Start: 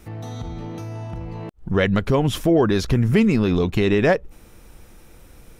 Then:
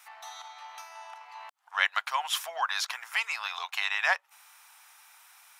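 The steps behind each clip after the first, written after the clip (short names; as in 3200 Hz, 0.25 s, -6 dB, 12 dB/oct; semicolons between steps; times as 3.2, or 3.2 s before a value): steep high-pass 810 Hz 48 dB/oct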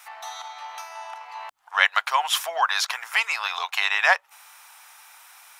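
low shelf 360 Hz +11.5 dB; gain +6.5 dB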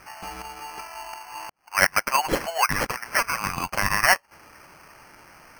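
sample-and-hold 12×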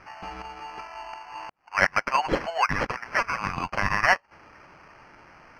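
air absorption 180 m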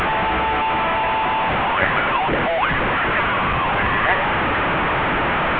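delta modulation 16 kbps, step -14.5 dBFS; gain +1.5 dB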